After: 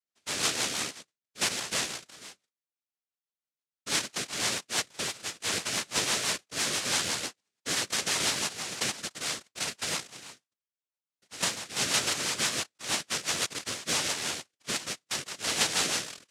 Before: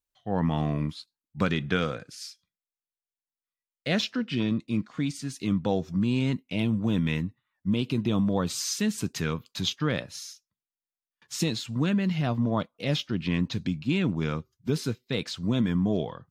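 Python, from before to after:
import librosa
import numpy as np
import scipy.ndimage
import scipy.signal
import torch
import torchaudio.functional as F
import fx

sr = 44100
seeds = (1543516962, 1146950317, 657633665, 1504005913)

y = fx.noise_vocoder(x, sr, seeds[0], bands=1)
y = fx.rotary(y, sr, hz=6.0)
y = y * librosa.db_to_amplitude(-1.5)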